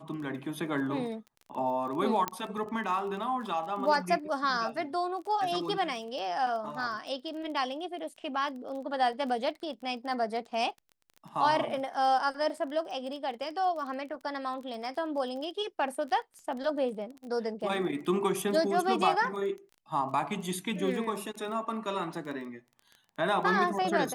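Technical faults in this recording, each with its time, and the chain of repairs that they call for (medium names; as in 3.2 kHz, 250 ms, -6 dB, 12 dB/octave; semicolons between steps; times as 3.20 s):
crackle 21 per s -39 dBFS
2.28 s: pop -14 dBFS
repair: de-click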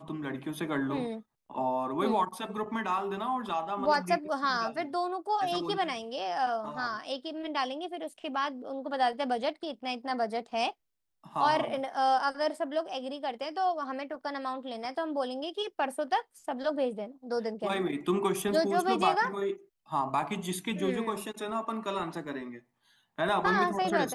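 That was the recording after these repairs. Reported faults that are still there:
nothing left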